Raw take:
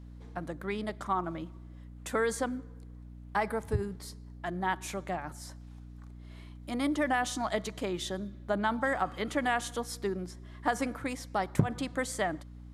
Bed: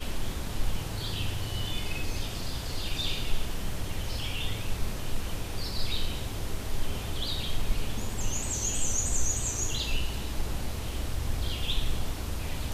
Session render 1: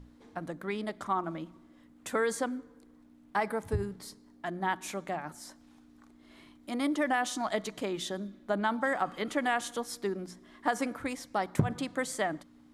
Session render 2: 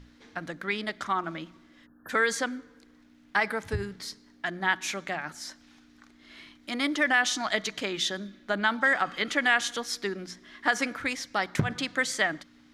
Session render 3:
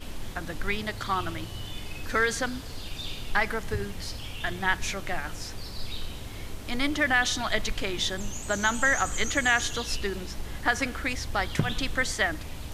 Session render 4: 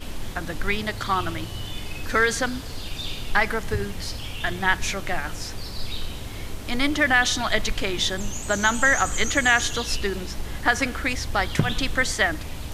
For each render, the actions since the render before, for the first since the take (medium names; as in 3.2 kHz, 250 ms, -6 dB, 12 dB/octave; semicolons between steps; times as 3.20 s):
hum notches 60/120/180 Hz
1.86–2.09 s: spectral selection erased 1.8–11 kHz; high-order bell 3 kHz +10.5 dB 2.5 oct
add bed -5 dB
trim +4.5 dB